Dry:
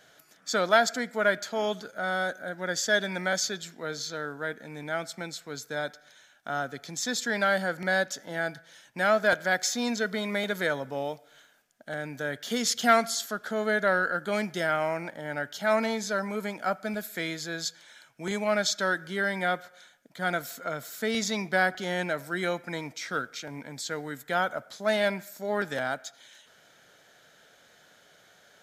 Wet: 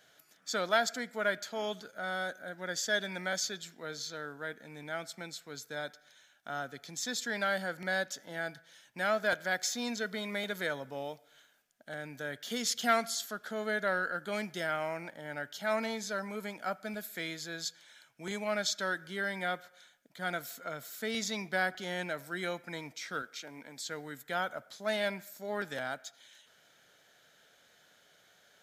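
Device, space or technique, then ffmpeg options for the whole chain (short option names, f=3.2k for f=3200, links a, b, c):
presence and air boost: -filter_complex "[0:a]asettb=1/sr,asplit=3[a][b][c];[a]atrim=end=23.224[d];[b]atrim=start=23.22:end=23.79,asetpts=PTS-STARTPTS,afade=t=in:d=0.004:c=qsin,afade=t=out:st=0.566:d=0.004:c=qsin,highpass=210[e];[c]atrim=start=23.786[f];[d][e]acrossfade=d=0.004:c1=hsin:c2=qsin[g];[g][f]acrossfade=d=0.004:c1=qsin:c2=hsin,equalizer=f=3.1k:t=o:w=1.5:g=3,highshelf=f=10k:g=6,volume=-7.5dB"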